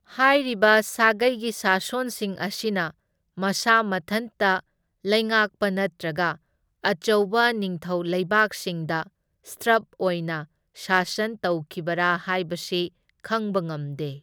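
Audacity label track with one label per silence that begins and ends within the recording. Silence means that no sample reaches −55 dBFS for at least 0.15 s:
2.920000	3.370000	silence
4.610000	5.040000	silence
6.370000	6.830000	silence
9.090000	9.440000	silence
10.460000	10.750000	silence
12.890000	13.090000	silence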